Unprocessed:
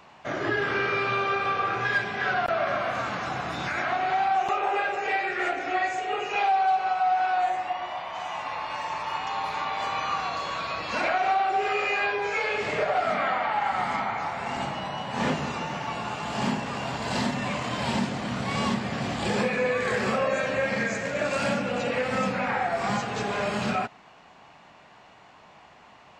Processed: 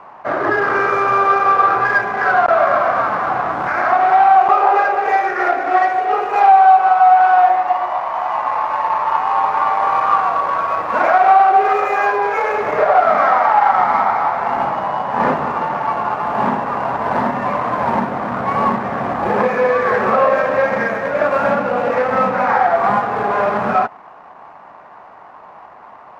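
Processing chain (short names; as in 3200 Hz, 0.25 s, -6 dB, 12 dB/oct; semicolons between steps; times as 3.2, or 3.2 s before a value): median filter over 15 samples; EQ curve 150 Hz 0 dB, 1100 Hz +15 dB, 7100 Hz -10 dB; gain +2 dB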